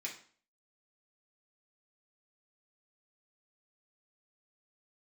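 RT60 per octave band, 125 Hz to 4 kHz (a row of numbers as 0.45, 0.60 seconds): 0.45, 0.50, 0.45, 0.45, 0.45, 0.40 seconds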